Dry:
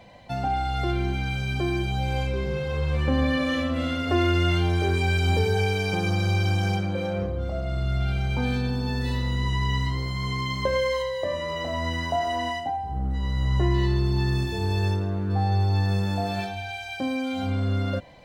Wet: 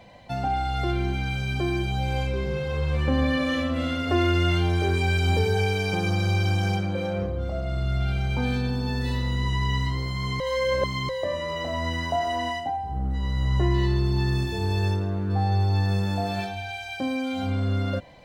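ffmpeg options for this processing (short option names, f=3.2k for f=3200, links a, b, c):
-filter_complex "[0:a]asplit=3[a][b][c];[a]atrim=end=10.402[d];[b]atrim=start=10.398:end=11.092,asetpts=PTS-STARTPTS,areverse[e];[c]atrim=start=11.088[f];[d][e]acrossfade=d=0.004:c1=hsin:c2=hsin[g];[g][f]acrossfade=d=0.004:c1=hsin:c2=hsin"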